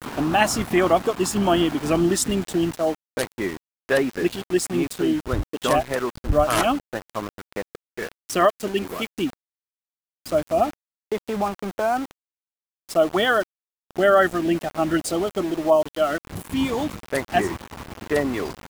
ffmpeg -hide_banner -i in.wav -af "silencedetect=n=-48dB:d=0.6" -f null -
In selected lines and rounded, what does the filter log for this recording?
silence_start: 9.33
silence_end: 10.26 | silence_duration: 0.92
silence_start: 12.11
silence_end: 12.89 | silence_duration: 0.78